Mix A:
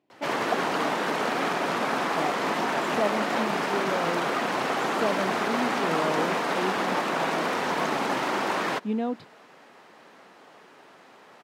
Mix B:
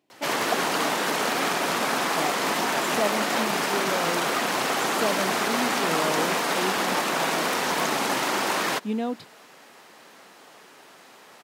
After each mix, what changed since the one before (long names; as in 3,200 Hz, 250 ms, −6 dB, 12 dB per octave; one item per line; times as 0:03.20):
master: remove low-pass filter 2,000 Hz 6 dB per octave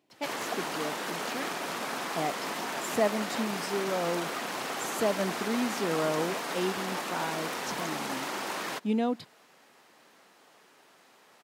background −9.5 dB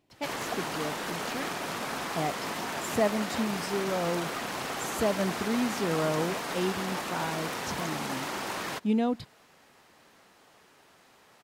master: remove high-pass filter 200 Hz 12 dB per octave